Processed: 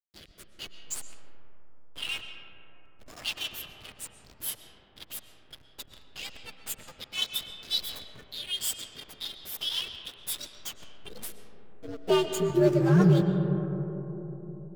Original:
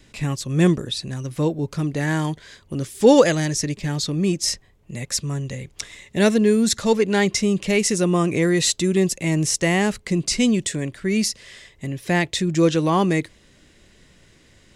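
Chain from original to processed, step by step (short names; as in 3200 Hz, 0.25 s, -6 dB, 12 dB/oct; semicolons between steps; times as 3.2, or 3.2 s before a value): inharmonic rescaling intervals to 125%; in parallel at +2 dB: compressor 12:1, threshold -26 dBFS, peak gain reduction 15.5 dB; on the sum: high-pass sweep 3200 Hz -> 160 Hz, 10.16–12.92; backlash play -22 dBFS; rotary speaker horn 0.8 Hz, later 5.5 Hz, at 3.33; on a send at -6.5 dB: reverb RT60 3.8 s, pre-delay 80 ms; on the sum: gain -5.5 dB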